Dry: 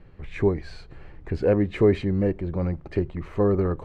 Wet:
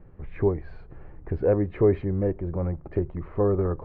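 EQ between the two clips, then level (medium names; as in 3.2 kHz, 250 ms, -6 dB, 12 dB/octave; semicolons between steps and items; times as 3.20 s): low-pass 1.3 kHz 12 dB/octave; dynamic bell 220 Hz, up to -6 dB, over -35 dBFS, Q 1.7; 0.0 dB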